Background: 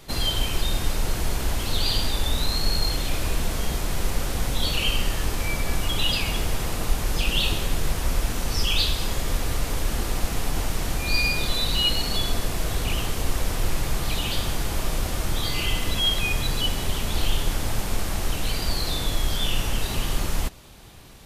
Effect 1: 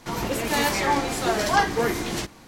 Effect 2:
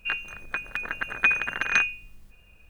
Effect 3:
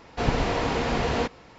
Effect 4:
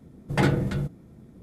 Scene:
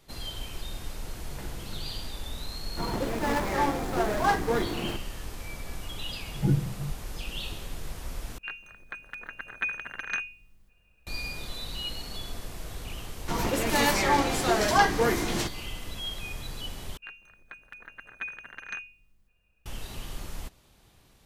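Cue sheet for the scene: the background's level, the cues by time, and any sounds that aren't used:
background -13 dB
1.01 add 4 -10.5 dB + compressor, threshold -31 dBFS
2.71 add 1 -3 dB + median filter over 15 samples
6.05 add 4 -6 dB + spectral expander 2.5:1
8.38 replace with 2 -9.5 dB
13.22 add 1 -1 dB
16.97 replace with 2 -15.5 dB
not used: 3

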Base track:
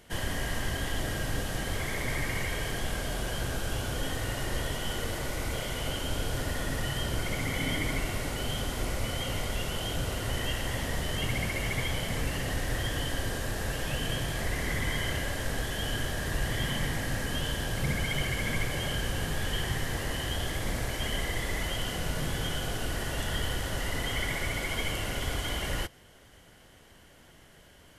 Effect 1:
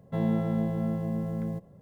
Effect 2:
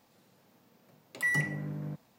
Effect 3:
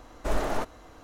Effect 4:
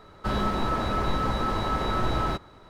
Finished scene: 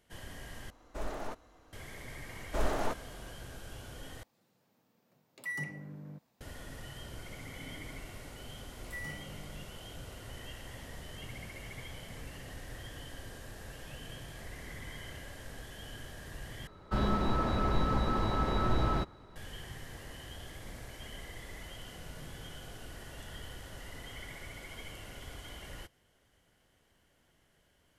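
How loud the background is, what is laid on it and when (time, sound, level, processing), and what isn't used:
base track -14.5 dB
0.7 replace with 3 -11 dB
2.29 add 3 -4 dB
4.23 replace with 2 -9 dB
7.7 add 2 -14.5 dB + spectral trails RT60 0.51 s
16.67 replace with 4 -6.5 dB + low shelf 440 Hz +5 dB
not used: 1

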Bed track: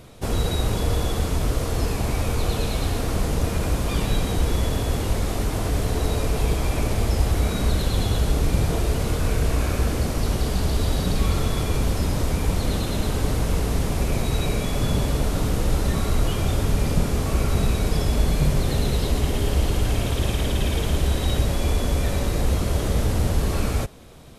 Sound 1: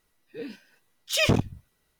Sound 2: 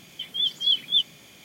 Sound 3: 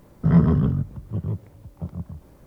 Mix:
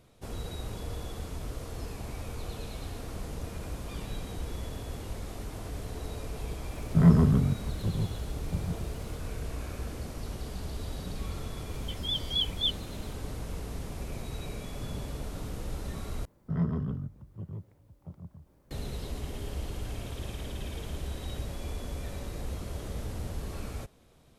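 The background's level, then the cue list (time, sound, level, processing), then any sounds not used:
bed track -15 dB
6.71 add 3 -3 dB
11.69 add 2 -7.5 dB + stuck buffer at 0.51
16.25 replace with 3 -13 dB
not used: 1

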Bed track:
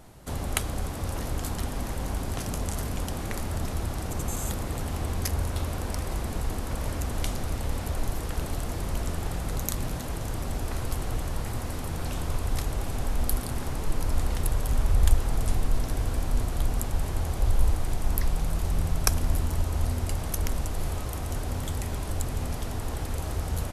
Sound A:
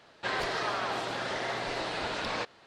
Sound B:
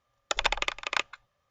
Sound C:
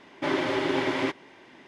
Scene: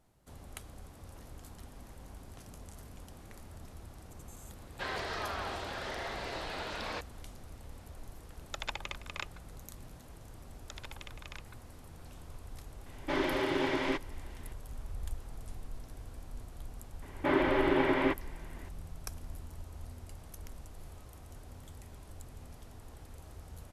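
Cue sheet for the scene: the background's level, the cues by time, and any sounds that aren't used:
bed track -19 dB
4.56 add A -6 dB
8.23 add B -12 dB
10.39 add B -12 dB + compressor, threshold -31 dBFS
12.86 add C -5 dB
17.02 add C -1 dB + LPF 2400 Hz

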